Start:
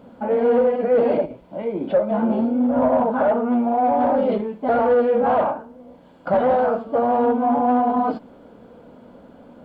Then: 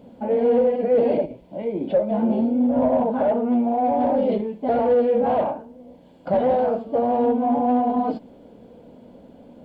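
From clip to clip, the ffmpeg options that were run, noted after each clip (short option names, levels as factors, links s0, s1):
-af "equalizer=f=1300:w=1.7:g=-12.5"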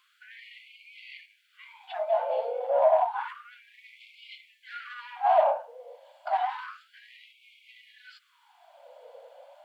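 -af "afftfilt=real='re*gte(b*sr/1024,460*pow(2100/460,0.5+0.5*sin(2*PI*0.3*pts/sr)))':imag='im*gte(b*sr/1024,460*pow(2100/460,0.5+0.5*sin(2*PI*0.3*pts/sr)))':win_size=1024:overlap=0.75,volume=1.26"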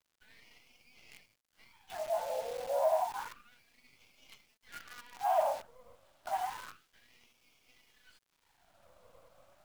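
-af "acrusher=bits=7:dc=4:mix=0:aa=0.000001,volume=0.398"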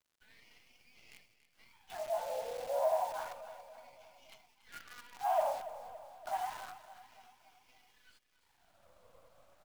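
-af "aecho=1:1:283|566|849|1132|1415:0.2|0.108|0.0582|0.0314|0.017,volume=0.794"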